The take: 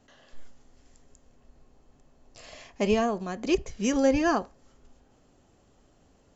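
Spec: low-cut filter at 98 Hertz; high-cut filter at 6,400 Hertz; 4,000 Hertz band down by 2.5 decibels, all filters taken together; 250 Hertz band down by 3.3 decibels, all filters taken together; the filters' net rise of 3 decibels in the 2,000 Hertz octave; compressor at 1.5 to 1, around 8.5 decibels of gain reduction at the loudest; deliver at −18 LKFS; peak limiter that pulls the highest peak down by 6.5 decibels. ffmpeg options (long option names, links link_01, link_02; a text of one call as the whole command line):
ffmpeg -i in.wav -af "highpass=98,lowpass=6400,equalizer=frequency=250:width_type=o:gain=-4,equalizer=frequency=2000:width_type=o:gain=5.5,equalizer=frequency=4000:width_type=o:gain=-6.5,acompressor=threshold=-44dB:ratio=1.5,volume=21dB,alimiter=limit=-7dB:level=0:latency=1" out.wav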